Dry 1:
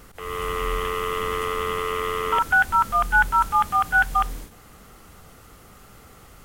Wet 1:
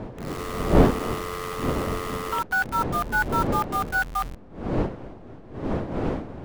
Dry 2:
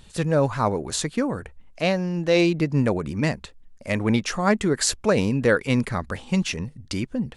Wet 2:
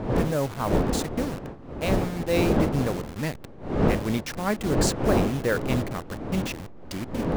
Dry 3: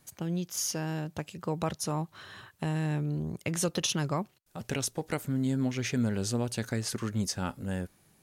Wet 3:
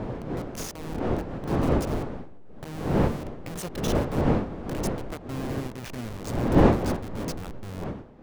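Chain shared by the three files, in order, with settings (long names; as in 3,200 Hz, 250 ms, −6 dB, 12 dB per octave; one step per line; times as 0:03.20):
hold until the input has moved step −25 dBFS
wind on the microphone 410 Hz −22 dBFS
level −5.5 dB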